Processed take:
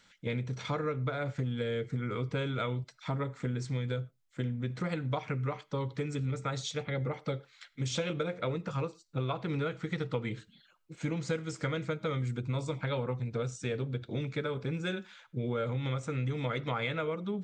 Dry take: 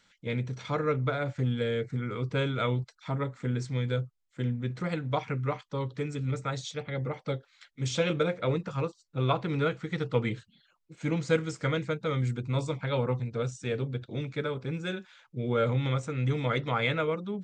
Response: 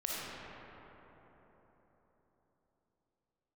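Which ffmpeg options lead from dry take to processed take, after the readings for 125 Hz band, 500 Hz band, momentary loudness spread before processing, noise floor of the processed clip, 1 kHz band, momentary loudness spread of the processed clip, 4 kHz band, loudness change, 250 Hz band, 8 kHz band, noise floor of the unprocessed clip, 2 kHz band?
−3.5 dB, −4.5 dB, 7 LU, −65 dBFS, −4.5 dB, 4 LU, −3.0 dB, −4.0 dB, −3.0 dB, −1.0 dB, −70 dBFS, −4.0 dB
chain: -filter_complex "[0:a]acompressor=threshold=-32dB:ratio=6,asplit=2[link_01][link_02];[1:a]atrim=start_sample=2205,afade=type=out:start_time=0.17:duration=0.01,atrim=end_sample=7938[link_03];[link_02][link_03]afir=irnorm=-1:irlink=0,volume=-19.5dB[link_04];[link_01][link_04]amix=inputs=2:normalize=0,volume=1.5dB"

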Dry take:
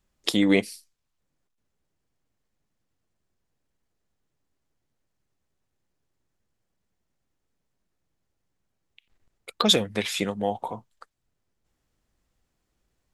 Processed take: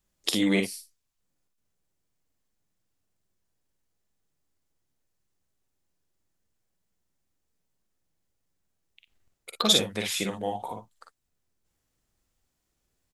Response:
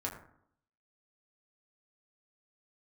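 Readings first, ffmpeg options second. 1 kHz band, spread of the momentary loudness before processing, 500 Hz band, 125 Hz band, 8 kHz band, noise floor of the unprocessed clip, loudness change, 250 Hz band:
−3.0 dB, 16 LU, −4.0 dB, −2.5 dB, +2.5 dB, −79 dBFS, −2.0 dB, −3.5 dB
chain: -af "highshelf=frequency=4900:gain=8.5,aecho=1:1:46|57:0.501|0.422,volume=-5dB"

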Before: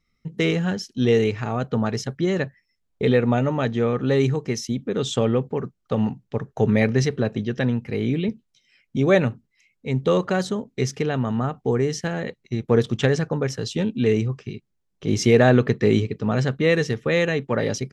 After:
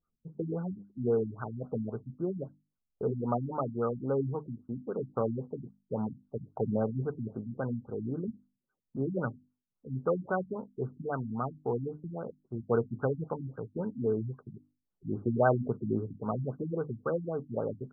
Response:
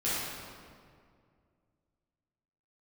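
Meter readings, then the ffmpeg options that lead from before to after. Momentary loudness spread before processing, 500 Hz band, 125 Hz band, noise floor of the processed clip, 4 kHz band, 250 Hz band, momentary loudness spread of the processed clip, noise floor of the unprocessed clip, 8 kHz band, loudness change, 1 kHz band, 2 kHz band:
9 LU, −11.0 dB, −12.5 dB, −85 dBFS, below −40 dB, −12.0 dB, 10 LU, −73 dBFS, below −40 dB, −11.5 dB, −7.5 dB, −17.0 dB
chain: -af "tiltshelf=frequency=870:gain=-8,bandreject=frequency=50:width_type=h:width=6,bandreject=frequency=100:width_type=h:width=6,bandreject=frequency=150:width_type=h:width=6,bandreject=frequency=200:width_type=h:width=6,bandreject=frequency=250:width_type=h:width=6,bandreject=frequency=300:width_type=h:width=6,afftfilt=real='re*lt(b*sr/1024,280*pow(1600/280,0.5+0.5*sin(2*PI*3.7*pts/sr)))':imag='im*lt(b*sr/1024,280*pow(1600/280,0.5+0.5*sin(2*PI*3.7*pts/sr)))':win_size=1024:overlap=0.75,volume=-4.5dB"

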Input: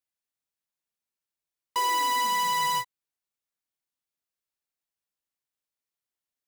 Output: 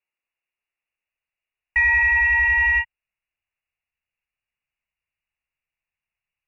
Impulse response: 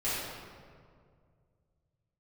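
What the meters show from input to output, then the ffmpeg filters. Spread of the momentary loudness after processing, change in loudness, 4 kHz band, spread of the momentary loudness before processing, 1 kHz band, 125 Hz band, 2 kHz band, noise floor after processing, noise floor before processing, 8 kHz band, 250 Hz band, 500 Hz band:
8 LU, +9.0 dB, below −15 dB, 8 LU, −7.0 dB, can't be measured, +18.5 dB, below −85 dBFS, below −85 dBFS, below −20 dB, below −10 dB, below −10 dB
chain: -af "lowpass=frequency=2500:width_type=q:width=0.5098,lowpass=frequency=2500:width_type=q:width=0.6013,lowpass=frequency=2500:width_type=q:width=0.9,lowpass=frequency=2500:width_type=q:width=2.563,afreqshift=-2900,asubboost=boost=12:cutoff=97,aexciter=amount=3.5:drive=5.4:freq=2100,volume=3.5dB"

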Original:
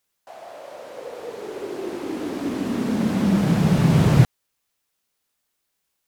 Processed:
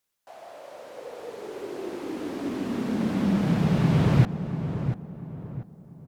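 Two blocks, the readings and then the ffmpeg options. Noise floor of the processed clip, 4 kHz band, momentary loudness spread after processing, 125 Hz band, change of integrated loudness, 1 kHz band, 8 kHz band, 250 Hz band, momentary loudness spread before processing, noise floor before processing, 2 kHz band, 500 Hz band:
−50 dBFS, −5.5 dB, 21 LU, −4.0 dB, −5.0 dB, −4.0 dB, −9.0 dB, −4.0 dB, 21 LU, −76 dBFS, −4.5 dB, −4.0 dB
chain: -filter_complex "[0:a]asplit=2[link_01][link_02];[link_02]adelay=690,lowpass=frequency=1300:poles=1,volume=-8.5dB,asplit=2[link_03][link_04];[link_04]adelay=690,lowpass=frequency=1300:poles=1,volume=0.39,asplit=2[link_05][link_06];[link_06]adelay=690,lowpass=frequency=1300:poles=1,volume=0.39,asplit=2[link_07][link_08];[link_08]adelay=690,lowpass=frequency=1300:poles=1,volume=0.39[link_09];[link_01][link_03][link_05][link_07][link_09]amix=inputs=5:normalize=0,acrossover=split=4800[link_10][link_11];[link_11]acompressor=threshold=-48dB:ratio=4:attack=1:release=60[link_12];[link_10][link_12]amix=inputs=2:normalize=0,volume=-4.5dB"

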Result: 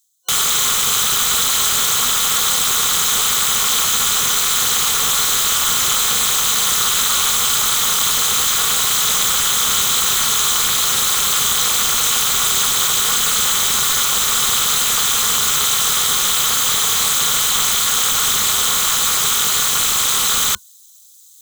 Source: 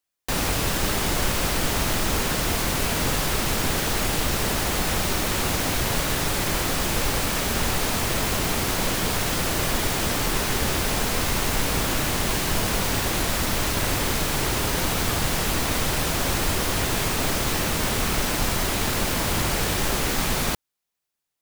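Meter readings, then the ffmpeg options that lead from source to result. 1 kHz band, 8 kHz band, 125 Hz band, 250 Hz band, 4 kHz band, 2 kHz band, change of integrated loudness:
+5.5 dB, +14.0 dB, −9.5 dB, −8.5 dB, +11.5 dB, +4.0 dB, +10.0 dB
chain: -filter_complex "[0:a]acrossover=split=500[link_01][link_02];[link_02]aexciter=amount=15.5:drive=3.9:freq=3700[link_03];[link_01][link_03]amix=inputs=2:normalize=0,equalizer=frequency=79:width_type=o:width=0.47:gain=-7,aeval=exprs='(mod(1.78*val(0)+1,2)-1)/1.78':channel_layout=same,tremolo=f=280:d=0.974,areverse,acompressor=mode=upward:threshold=-24dB:ratio=2.5,areverse,superequalizer=6b=0.316:8b=0.562:10b=2.51:13b=2.51:15b=2.24,volume=-5dB"

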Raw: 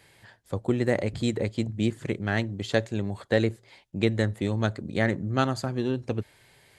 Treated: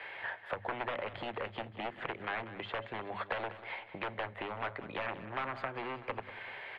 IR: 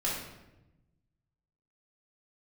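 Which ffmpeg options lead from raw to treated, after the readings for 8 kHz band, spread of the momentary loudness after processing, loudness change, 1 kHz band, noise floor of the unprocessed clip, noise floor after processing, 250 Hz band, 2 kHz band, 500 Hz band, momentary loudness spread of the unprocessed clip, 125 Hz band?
below −30 dB, 4 LU, −11.5 dB, −2.0 dB, −59 dBFS, −53 dBFS, −20.0 dB, −5.5 dB, −12.5 dB, 7 LU, −22.0 dB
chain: -filter_complex "[0:a]bandreject=frequency=50:width_type=h:width=6,bandreject=frequency=100:width_type=h:width=6,bandreject=frequency=150:width_type=h:width=6,bandreject=frequency=200:width_type=h:width=6,bandreject=frequency=250:width_type=h:width=6,aeval=exprs='0.0708*(abs(mod(val(0)/0.0708+3,4)-2)-1)':channel_layout=same,acompressor=threshold=-37dB:ratio=6,highshelf=frequency=4600:width_type=q:width=1.5:gain=-14,acrossover=split=230|1400[link_01][link_02][link_03];[link_01]acompressor=threshold=-43dB:ratio=4[link_04];[link_02]acompressor=threshold=-50dB:ratio=4[link_05];[link_03]acompressor=threshold=-55dB:ratio=4[link_06];[link_04][link_05][link_06]amix=inputs=3:normalize=0,acrossover=split=510 2700:gain=0.0708 1 0.0708[link_07][link_08][link_09];[link_07][link_08][link_09]amix=inputs=3:normalize=0,aecho=1:1:190|380|570|760|950:0.2|0.0978|0.0479|0.0235|0.0115,volume=16dB"

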